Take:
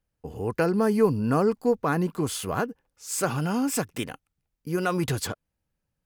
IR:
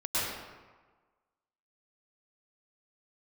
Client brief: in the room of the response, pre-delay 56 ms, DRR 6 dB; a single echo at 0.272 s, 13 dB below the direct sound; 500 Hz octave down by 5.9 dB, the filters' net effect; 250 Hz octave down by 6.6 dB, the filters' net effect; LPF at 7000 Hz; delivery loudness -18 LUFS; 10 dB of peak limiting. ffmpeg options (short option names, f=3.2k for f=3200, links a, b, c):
-filter_complex "[0:a]lowpass=7k,equalizer=f=250:t=o:g=-8,equalizer=f=500:t=o:g=-4.5,alimiter=limit=-22.5dB:level=0:latency=1,aecho=1:1:272:0.224,asplit=2[a][b];[1:a]atrim=start_sample=2205,adelay=56[c];[b][c]afir=irnorm=-1:irlink=0,volume=-15.5dB[d];[a][d]amix=inputs=2:normalize=0,volume=14.5dB"